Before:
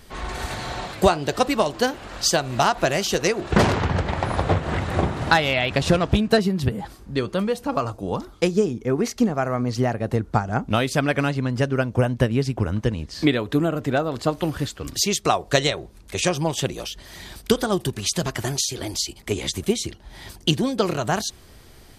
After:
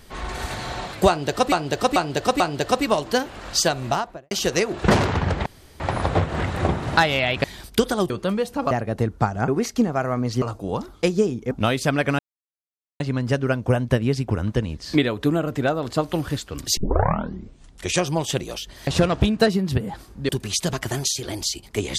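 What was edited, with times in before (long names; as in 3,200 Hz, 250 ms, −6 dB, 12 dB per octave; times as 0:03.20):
0:01.08–0:01.52: repeat, 4 plays
0:02.43–0:02.99: fade out and dull
0:04.14: splice in room tone 0.34 s
0:05.78–0:07.20: swap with 0:17.16–0:17.82
0:07.81–0:08.90: swap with 0:09.84–0:10.61
0:11.29: splice in silence 0.81 s
0:15.06: tape start 1.17 s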